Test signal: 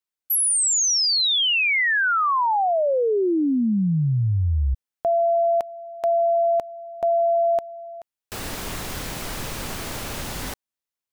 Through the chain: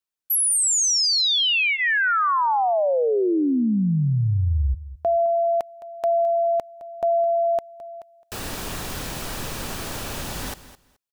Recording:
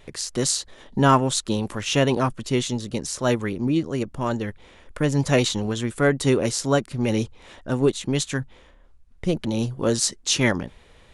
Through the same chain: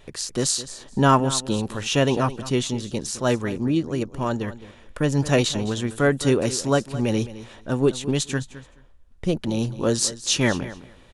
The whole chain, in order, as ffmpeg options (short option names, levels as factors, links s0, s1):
-filter_complex "[0:a]bandreject=f=2100:w=14,asplit=2[s0][s1];[s1]aecho=0:1:213|426:0.168|0.0285[s2];[s0][s2]amix=inputs=2:normalize=0"